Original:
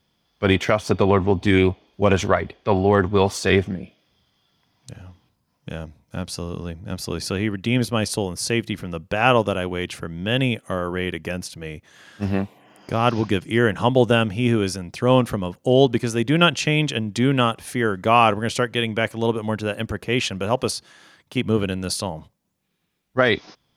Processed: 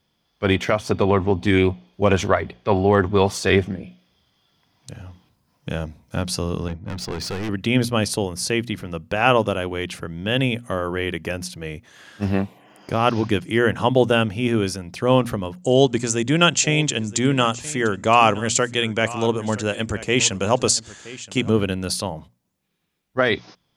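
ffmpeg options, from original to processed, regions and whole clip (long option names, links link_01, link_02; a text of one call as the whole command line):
ffmpeg -i in.wav -filter_complex "[0:a]asettb=1/sr,asplit=3[link_01][link_02][link_03];[link_01]atrim=end=6.684[link_04];[link_02]atrim=start=6.68:end=7.49,asetpts=PTS-STARTPTS,afade=type=in:duration=0.004:curve=qsin,afade=type=out:start_time=0.806:duration=0.004:curve=qsin,agate=range=-33dB:threshold=-35dB:ratio=3:release=100:detection=peak,volume=27.5dB,asoftclip=hard,volume=-27.5dB,adynamicsmooth=sensitivity=7:basefreq=3800[link_05];[link_03]atrim=start=7.486[link_06];[link_04][link_05]acrossfade=duration=0.004:curve1=hsin:curve2=qsin[link_07];[link_07][link_06]acrossfade=duration=0.004:curve1=qsin:curve2=hsin,asettb=1/sr,asplit=3[link_08][link_09][link_10];[link_08]atrim=end=15.624[link_11];[link_09]atrim=start=15.62:end=21.5,asetpts=PTS-STARTPTS,afade=type=in:duration=0.004:curve=qsin,afade=type=out:start_time=5.876:duration=0.004:curve=qsin,lowpass=frequency=7400:width_type=q:width=7.4,aecho=1:1:971:0.126,atrim=end_sample=259308[link_12];[link_10]atrim=start=21.496[link_13];[link_11][link_12]acrossfade=duration=0.004:curve1=hsin:curve2=qsin[link_14];[link_14][link_13]acrossfade=duration=0.004:curve1=qsin:curve2=hsin,bandreject=frequency=60:width_type=h:width=6,bandreject=frequency=120:width_type=h:width=6,bandreject=frequency=180:width_type=h:width=6,bandreject=frequency=240:width_type=h:width=6,dynaudnorm=framelen=160:gausssize=21:maxgain=8dB,volume=-1dB" out.wav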